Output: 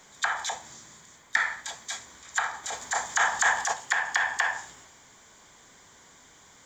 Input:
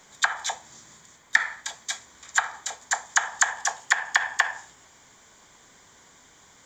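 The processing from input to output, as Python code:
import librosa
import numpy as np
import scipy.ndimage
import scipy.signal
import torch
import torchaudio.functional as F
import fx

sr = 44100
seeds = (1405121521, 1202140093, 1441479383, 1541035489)

y = fx.transient(x, sr, attack_db=-6, sustain_db=fx.steps((0.0, 3.0), (2.63, 9.0), (3.72, 4.0)))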